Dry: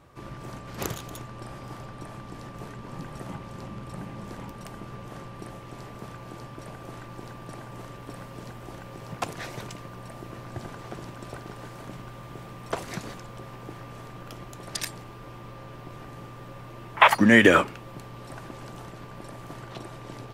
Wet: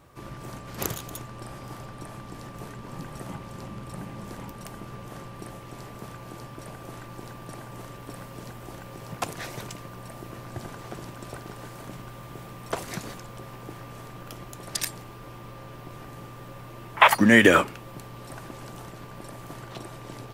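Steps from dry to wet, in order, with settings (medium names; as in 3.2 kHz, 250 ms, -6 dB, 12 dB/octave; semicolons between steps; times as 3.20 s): treble shelf 8.9 kHz +9.5 dB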